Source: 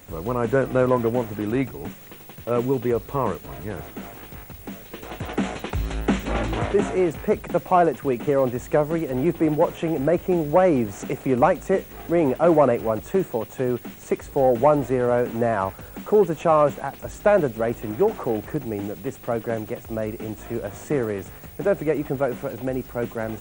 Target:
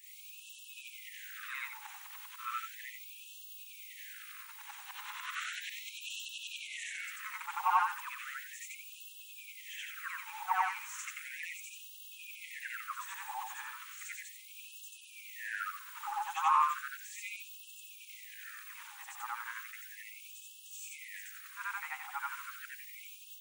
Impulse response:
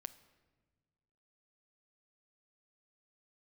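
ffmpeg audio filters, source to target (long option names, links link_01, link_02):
-af "afftfilt=real='re':imag='-im':win_size=8192:overlap=0.75,afftfilt=real='re*gte(b*sr/1024,760*pow(2600/760,0.5+0.5*sin(2*PI*0.35*pts/sr)))':imag='im*gte(b*sr/1024,760*pow(2600/760,0.5+0.5*sin(2*PI*0.35*pts/sr)))':win_size=1024:overlap=0.75,volume=1.5dB"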